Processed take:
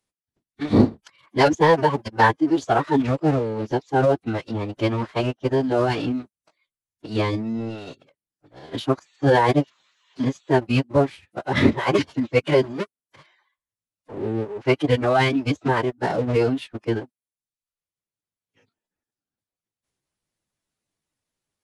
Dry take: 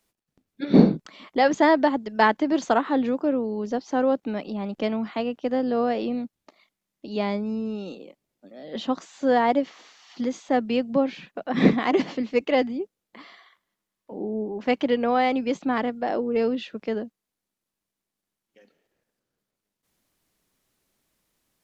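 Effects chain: reverb removal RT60 0.77 s; sample leveller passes 2; formant-preserving pitch shift -11.5 st; gain -2.5 dB

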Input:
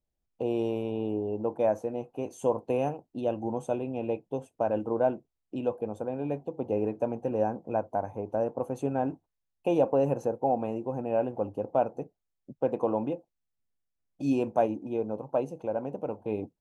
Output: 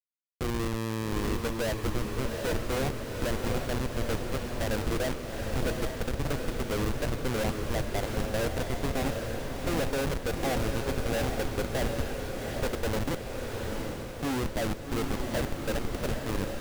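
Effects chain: Schmitt trigger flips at -29 dBFS; diffused feedback echo 0.783 s, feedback 59%, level -3.5 dB; gain +1.5 dB

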